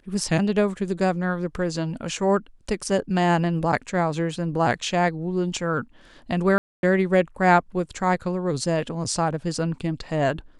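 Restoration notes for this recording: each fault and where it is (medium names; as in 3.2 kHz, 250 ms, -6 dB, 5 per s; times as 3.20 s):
6.58–6.83 s: dropout 251 ms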